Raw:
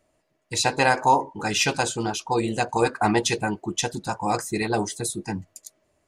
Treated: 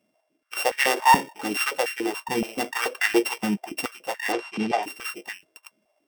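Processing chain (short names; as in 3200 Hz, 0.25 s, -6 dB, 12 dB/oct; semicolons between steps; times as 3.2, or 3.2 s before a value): sample sorter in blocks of 16 samples; 4.32–4.83 LPF 5200 Hz 12 dB/oct; stepped high-pass 7 Hz 200–1800 Hz; gain -5 dB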